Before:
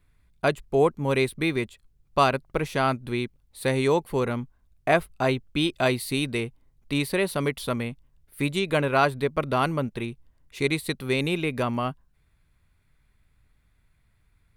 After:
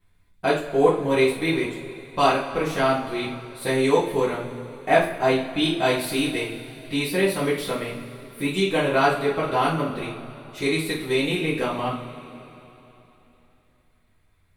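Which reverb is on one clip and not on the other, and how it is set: two-slope reverb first 0.39 s, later 3.4 s, from -19 dB, DRR -8.5 dB; gain -6.5 dB

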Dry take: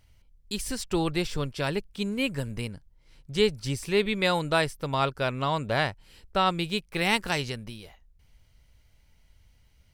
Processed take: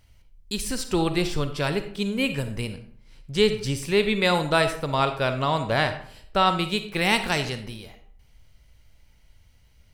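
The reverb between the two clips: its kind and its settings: digital reverb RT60 0.6 s, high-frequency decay 0.65×, pre-delay 10 ms, DRR 8.5 dB; gain +3 dB

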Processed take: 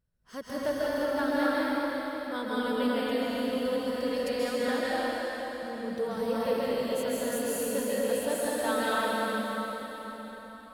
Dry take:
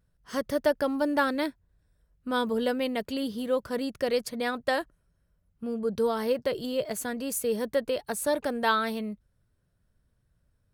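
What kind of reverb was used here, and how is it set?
plate-style reverb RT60 4.6 s, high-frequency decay 0.9×, pre-delay 0.12 s, DRR -9 dB; gain -9.5 dB

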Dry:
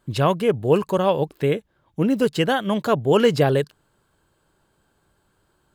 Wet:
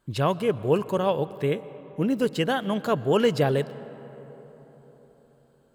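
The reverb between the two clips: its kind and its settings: digital reverb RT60 4.5 s, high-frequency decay 0.4×, pre-delay 80 ms, DRR 16.5 dB; gain -4.5 dB

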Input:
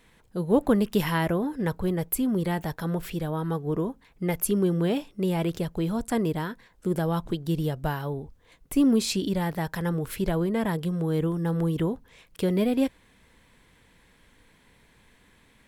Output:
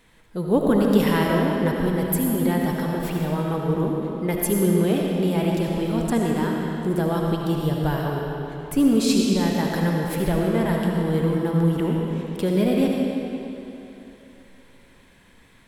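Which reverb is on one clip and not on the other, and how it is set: digital reverb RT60 3.1 s, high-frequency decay 0.85×, pre-delay 35 ms, DRR -1 dB; gain +1.5 dB

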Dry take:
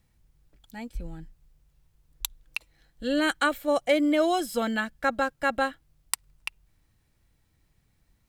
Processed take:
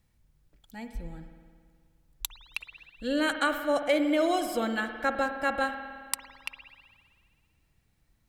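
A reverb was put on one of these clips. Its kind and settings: spring tank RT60 1.9 s, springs 53 ms, chirp 65 ms, DRR 7 dB; gain -2.5 dB

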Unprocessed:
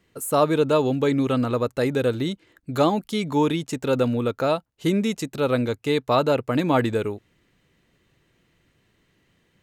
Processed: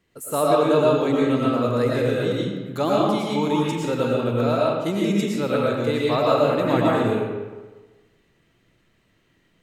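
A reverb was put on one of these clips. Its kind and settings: digital reverb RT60 1.3 s, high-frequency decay 0.65×, pre-delay 70 ms, DRR -5 dB; gain -4.5 dB

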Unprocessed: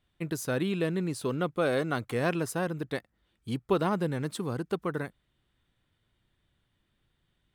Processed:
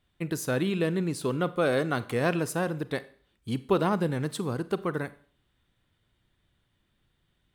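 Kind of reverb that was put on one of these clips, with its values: Schroeder reverb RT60 0.48 s, combs from 31 ms, DRR 15.5 dB; gain +2 dB

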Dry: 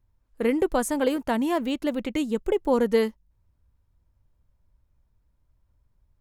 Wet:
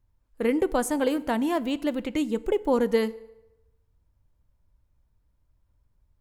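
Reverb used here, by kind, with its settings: FDN reverb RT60 0.96 s, low-frequency decay 0.75×, high-frequency decay 0.75×, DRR 16.5 dB; gain -1 dB

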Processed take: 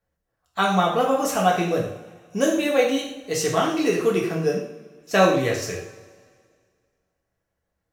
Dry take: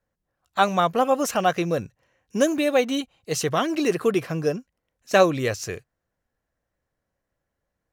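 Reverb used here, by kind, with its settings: two-slope reverb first 0.56 s, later 2 s, from -18 dB, DRR -2.5 dB; gain -3 dB

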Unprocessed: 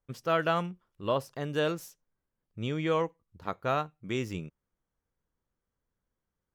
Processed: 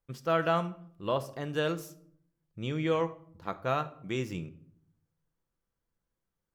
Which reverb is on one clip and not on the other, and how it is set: shoebox room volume 1000 m³, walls furnished, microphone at 0.75 m; gain -1.5 dB

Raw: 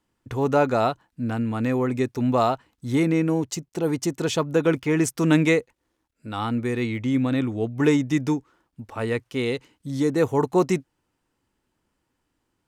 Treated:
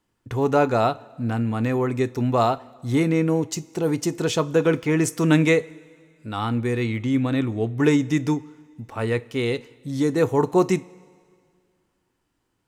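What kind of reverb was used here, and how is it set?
two-slope reverb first 0.26 s, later 2.1 s, from -18 dB, DRR 13.5 dB; gain +1 dB

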